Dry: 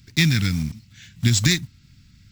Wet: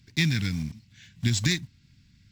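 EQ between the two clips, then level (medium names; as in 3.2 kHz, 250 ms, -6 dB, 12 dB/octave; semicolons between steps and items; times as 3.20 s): bass shelf 72 Hz -5.5 dB; treble shelf 9 kHz -9.5 dB; band-stop 1.3 kHz, Q 8.1; -5.0 dB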